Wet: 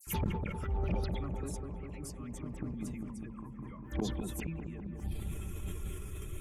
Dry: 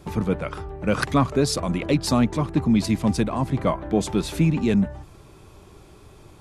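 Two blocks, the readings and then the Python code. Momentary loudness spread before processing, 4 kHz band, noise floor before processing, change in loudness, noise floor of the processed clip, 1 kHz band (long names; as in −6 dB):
6 LU, −18.0 dB, −49 dBFS, −16.5 dB, −46 dBFS, −17.5 dB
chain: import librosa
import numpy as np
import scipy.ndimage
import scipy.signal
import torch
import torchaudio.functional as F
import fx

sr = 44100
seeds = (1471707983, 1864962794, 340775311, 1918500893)

p1 = fx.bin_expand(x, sr, power=1.5)
p2 = fx.gate_flip(p1, sr, shuts_db=-24.0, range_db=-41)
p3 = fx.dispersion(p2, sr, late='lows', ms=70.0, hz=2600.0)
p4 = fx.over_compress(p3, sr, threshold_db=-51.0, ratio=-1.0)
p5 = p3 + (p4 * librosa.db_to_amplitude(-0.5))
p6 = fx.env_phaser(p5, sr, low_hz=580.0, high_hz=1600.0, full_db=-36.0)
p7 = 10.0 ** (-35.0 / 20.0) * np.tanh(p6 / 10.0 ** (-35.0 / 20.0))
p8 = fx.peak_eq(p7, sr, hz=9000.0, db=10.0, octaves=2.2)
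p9 = fx.echo_wet_lowpass(p8, sr, ms=200, feedback_pct=76, hz=1200.0, wet_db=-4.5)
p10 = fx.sustainer(p9, sr, db_per_s=34.0)
y = p10 * librosa.db_to_amplitude(7.5)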